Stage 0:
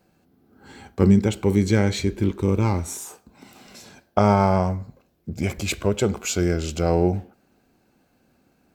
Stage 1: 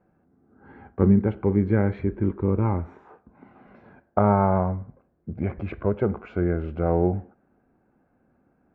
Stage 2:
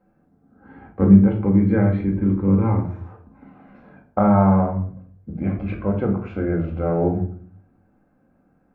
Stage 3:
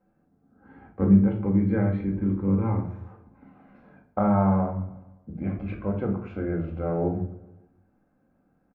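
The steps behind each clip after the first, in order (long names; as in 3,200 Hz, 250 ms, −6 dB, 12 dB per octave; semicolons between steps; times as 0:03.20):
low-pass filter 1,700 Hz 24 dB per octave; level −2 dB
rectangular room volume 430 cubic metres, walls furnished, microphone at 2.1 metres; level −1 dB
repeating echo 142 ms, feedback 59%, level −23.5 dB; level −6 dB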